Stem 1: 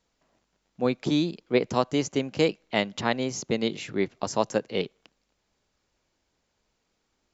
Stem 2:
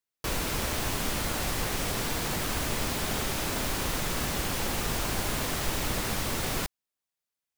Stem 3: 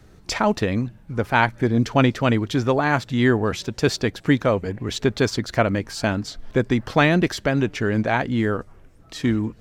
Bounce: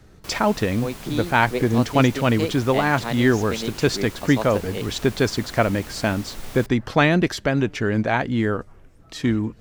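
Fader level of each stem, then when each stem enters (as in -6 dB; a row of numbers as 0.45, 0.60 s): -3.5, -9.0, 0.0 dB; 0.00, 0.00, 0.00 s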